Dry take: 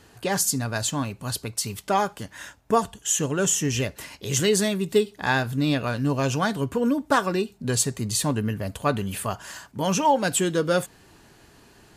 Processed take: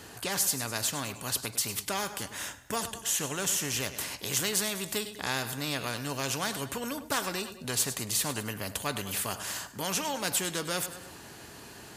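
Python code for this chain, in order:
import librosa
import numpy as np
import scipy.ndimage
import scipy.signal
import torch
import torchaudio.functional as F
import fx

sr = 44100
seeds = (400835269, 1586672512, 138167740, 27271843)

y = scipy.signal.sosfilt(scipy.signal.butter(2, 72.0, 'highpass', fs=sr, output='sos'), x)
y = fx.high_shelf(y, sr, hz=7200.0, db=5.5)
y = fx.echo_feedback(y, sr, ms=102, feedback_pct=41, wet_db=-20)
y = fx.spectral_comp(y, sr, ratio=2.0)
y = y * 10.0 ** (-6.5 / 20.0)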